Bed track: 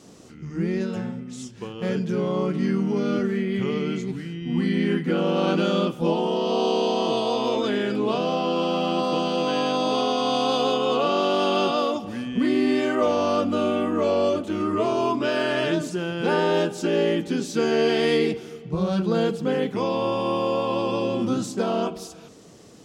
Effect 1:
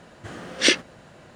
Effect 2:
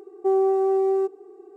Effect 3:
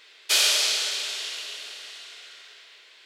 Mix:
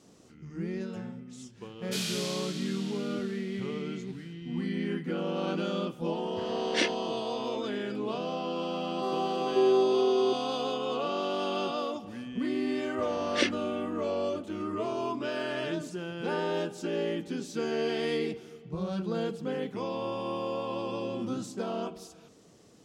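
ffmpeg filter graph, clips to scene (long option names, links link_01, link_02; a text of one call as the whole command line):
ffmpeg -i bed.wav -i cue0.wav -i cue1.wav -i cue2.wav -filter_complex "[1:a]asplit=2[link_01][link_02];[0:a]volume=-9.5dB[link_03];[link_01]highshelf=frequency=6000:gain=-11.5[link_04];[2:a]acrossover=split=540[link_05][link_06];[link_05]adelay=540[link_07];[link_07][link_06]amix=inputs=2:normalize=0[link_08];[link_02]lowpass=frequency=2700:poles=1[link_09];[3:a]atrim=end=3.05,asetpts=PTS-STARTPTS,volume=-14.5dB,afade=type=in:duration=0.004:curve=hsin,afade=type=out:start_time=3.046:duration=0.004:curve=hsin,adelay=1620[link_10];[link_04]atrim=end=1.35,asetpts=PTS-STARTPTS,volume=-8dB,afade=type=in:duration=0.004:curve=hsin,afade=type=out:start_time=1.346:duration=0.004:curve=hsin,adelay=6130[link_11];[link_08]atrim=end=1.56,asetpts=PTS-STARTPTS,volume=-2.5dB,afade=type=in:duration=0.004:curve=hsin,afade=type=out:start_time=1.556:duration=0.004:curve=hsin,adelay=8770[link_12];[link_09]atrim=end=1.35,asetpts=PTS-STARTPTS,volume=-7.5dB,afade=type=in:duration=0.004:curve=hsin,afade=type=out:start_time=1.346:duration=0.004:curve=hsin,adelay=12740[link_13];[link_03][link_10][link_11][link_12][link_13]amix=inputs=5:normalize=0" out.wav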